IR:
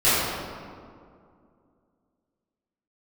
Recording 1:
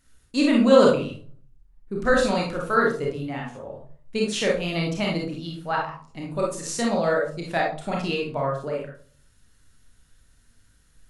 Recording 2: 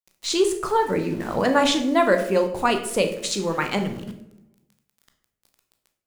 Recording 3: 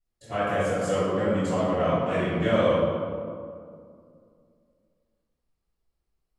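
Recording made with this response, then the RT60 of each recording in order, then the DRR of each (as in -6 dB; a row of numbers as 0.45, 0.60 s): 3; 0.45, 0.80, 2.3 s; -2.0, 5.0, -16.0 dB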